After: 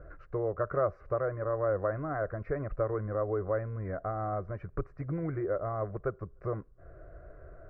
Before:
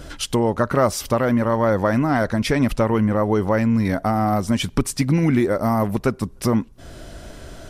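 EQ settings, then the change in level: four-pole ladder low-pass 1.5 kHz, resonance 25%; static phaser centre 890 Hz, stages 6; -4.0 dB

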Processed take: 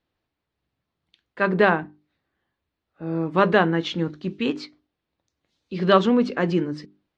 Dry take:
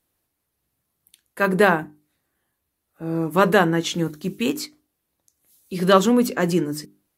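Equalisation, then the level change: low-pass 4.3 kHz 24 dB/octave; -1.5 dB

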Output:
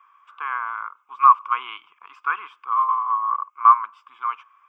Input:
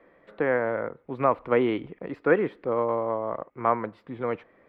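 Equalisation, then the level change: resonant high-pass 1.1 kHz, resonance Q 10; tilt shelf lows -9.5 dB, about 1.5 kHz; static phaser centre 2.8 kHz, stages 8; 0.0 dB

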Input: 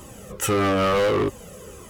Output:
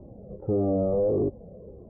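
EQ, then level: Chebyshev low-pass 690 Hz, order 4; distance through air 300 m; -1.5 dB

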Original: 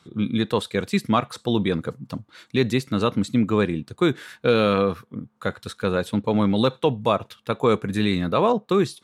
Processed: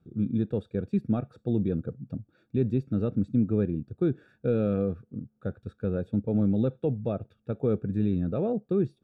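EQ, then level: boxcar filter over 43 samples; bass shelf 92 Hz +10.5 dB; -5.0 dB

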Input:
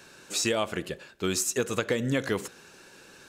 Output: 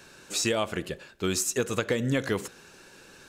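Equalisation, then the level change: bass shelf 73 Hz +7.5 dB; 0.0 dB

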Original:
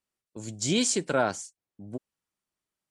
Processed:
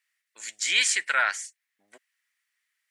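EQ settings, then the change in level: dynamic bell 5.8 kHz, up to -6 dB, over -42 dBFS, Q 0.71; resonant high-pass 1.9 kHz, resonance Q 5.4; +6.5 dB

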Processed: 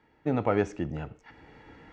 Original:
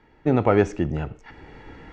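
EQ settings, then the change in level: high-pass 90 Hz 6 dB/octave; band-stop 380 Hz, Q 12; -6.5 dB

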